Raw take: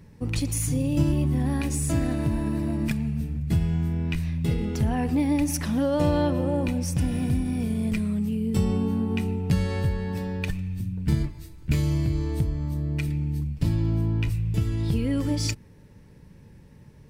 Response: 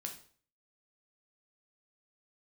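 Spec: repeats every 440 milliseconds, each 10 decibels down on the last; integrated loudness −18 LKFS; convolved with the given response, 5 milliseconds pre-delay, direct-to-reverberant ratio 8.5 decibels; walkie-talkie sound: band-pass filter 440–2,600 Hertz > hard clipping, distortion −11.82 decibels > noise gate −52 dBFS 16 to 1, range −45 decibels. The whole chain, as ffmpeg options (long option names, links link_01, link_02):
-filter_complex "[0:a]aecho=1:1:440|880|1320|1760:0.316|0.101|0.0324|0.0104,asplit=2[link_01][link_02];[1:a]atrim=start_sample=2205,adelay=5[link_03];[link_02][link_03]afir=irnorm=-1:irlink=0,volume=-6.5dB[link_04];[link_01][link_04]amix=inputs=2:normalize=0,highpass=440,lowpass=2600,asoftclip=type=hard:threshold=-28dB,agate=range=-45dB:threshold=-52dB:ratio=16,volume=18.5dB"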